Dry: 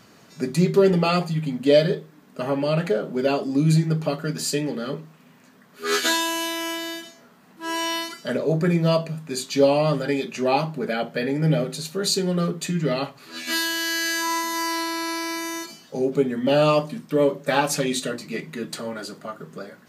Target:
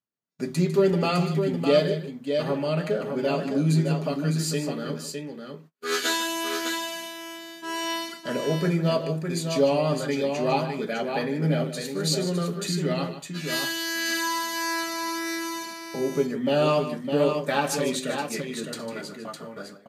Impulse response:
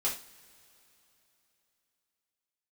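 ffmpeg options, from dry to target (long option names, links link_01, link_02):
-filter_complex "[0:a]agate=range=-41dB:threshold=-38dB:ratio=16:detection=peak,asplit=2[link_01][link_02];[link_02]aecho=0:1:151|608:0.266|0.501[link_03];[link_01][link_03]amix=inputs=2:normalize=0,volume=-4dB"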